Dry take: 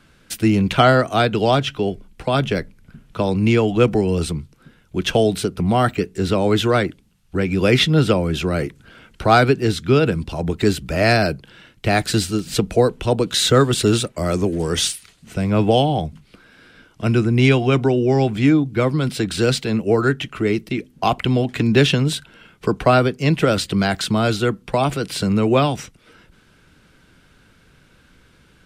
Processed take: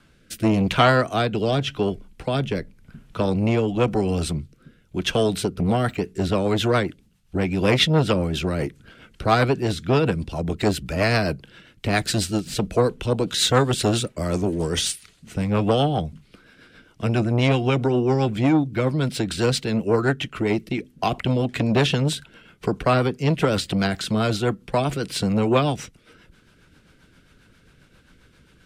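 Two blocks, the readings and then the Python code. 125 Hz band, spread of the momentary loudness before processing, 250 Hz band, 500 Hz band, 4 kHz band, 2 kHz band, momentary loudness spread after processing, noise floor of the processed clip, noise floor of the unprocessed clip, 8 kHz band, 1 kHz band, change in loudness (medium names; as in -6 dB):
-3.5 dB, 10 LU, -4.0 dB, -4.0 dB, -3.0 dB, -4.0 dB, 9 LU, -57 dBFS, -54 dBFS, -3.0 dB, -4.0 dB, -3.5 dB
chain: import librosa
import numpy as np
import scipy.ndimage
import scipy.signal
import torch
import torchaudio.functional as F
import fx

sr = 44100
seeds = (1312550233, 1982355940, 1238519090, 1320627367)

y = fx.rotary_switch(x, sr, hz=0.9, then_hz=7.5, switch_at_s=5.26)
y = fx.transformer_sat(y, sr, knee_hz=750.0)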